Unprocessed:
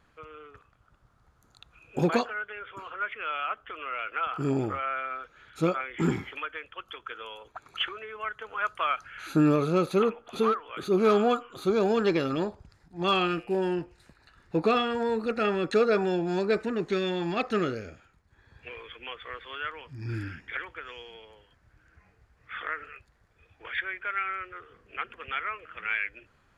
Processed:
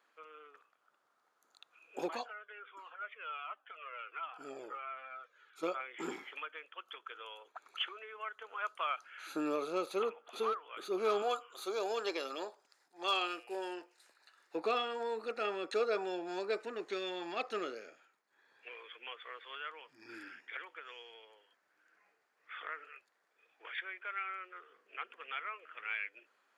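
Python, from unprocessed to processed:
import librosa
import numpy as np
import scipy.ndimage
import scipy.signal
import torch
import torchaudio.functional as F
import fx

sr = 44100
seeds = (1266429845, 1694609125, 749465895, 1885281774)

y = fx.comb_cascade(x, sr, direction='falling', hz=1.4, at=(2.08, 5.63))
y = fx.bass_treble(y, sr, bass_db=-14, treble_db=6, at=(11.22, 14.55))
y = scipy.signal.sosfilt(scipy.signal.bessel(4, 490.0, 'highpass', norm='mag', fs=sr, output='sos'), y)
y = fx.dynamic_eq(y, sr, hz=1700.0, q=2.0, threshold_db=-43.0, ratio=4.0, max_db=-5)
y = y * 10.0 ** (-6.0 / 20.0)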